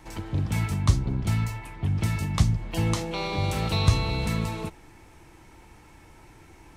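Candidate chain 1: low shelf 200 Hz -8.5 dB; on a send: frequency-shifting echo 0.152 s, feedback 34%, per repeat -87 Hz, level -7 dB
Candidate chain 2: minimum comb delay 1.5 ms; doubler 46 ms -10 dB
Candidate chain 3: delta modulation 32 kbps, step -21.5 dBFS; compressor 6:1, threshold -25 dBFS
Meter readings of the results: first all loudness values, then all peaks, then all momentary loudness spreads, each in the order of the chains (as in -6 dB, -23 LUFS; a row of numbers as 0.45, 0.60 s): -30.5, -27.0, -29.0 LUFS; -11.5, -7.0, -12.0 dBFS; 10, 8, 2 LU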